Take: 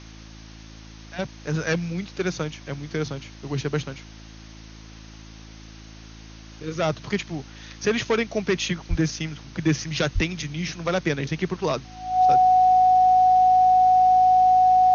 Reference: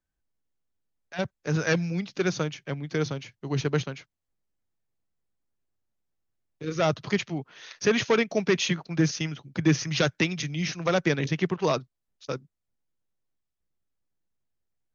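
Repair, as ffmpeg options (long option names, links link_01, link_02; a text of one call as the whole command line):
ffmpeg -i in.wav -filter_complex "[0:a]bandreject=frequency=54.3:width_type=h:width=4,bandreject=frequency=108.6:width_type=h:width=4,bandreject=frequency=162.9:width_type=h:width=4,bandreject=frequency=217.2:width_type=h:width=4,bandreject=frequency=271.5:width_type=h:width=4,bandreject=frequency=325.8:width_type=h:width=4,bandreject=frequency=740:width=30,asplit=3[link_01][link_02][link_03];[link_01]afade=type=out:start_time=8.89:duration=0.02[link_04];[link_02]highpass=frequency=140:width=0.5412,highpass=frequency=140:width=1.3066,afade=type=in:start_time=8.89:duration=0.02,afade=type=out:start_time=9.01:duration=0.02[link_05];[link_03]afade=type=in:start_time=9.01:duration=0.02[link_06];[link_04][link_05][link_06]amix=inputs=3:normalize=0,asplit=3[link_07][link_08][link_09];[link_07]afade=type=out:start_time=10.14:duration=0.02[link_10];[link_08]highpass=frequency=140:width=0.5412,highpass=frequency=140:width=1.3066,afade=type=in:start_time=10.14:duration=0.02,afade=type=out:start_time=10.26:duration=0.02[link_11];[link_09]afade=type=in:start_time=10.26:duration=0.02[link_12];[link_10][link_11][link_12]amix=inputs=3:normalize=0,afftdn=noise_reduction=30:noise_floor=-43" out.wav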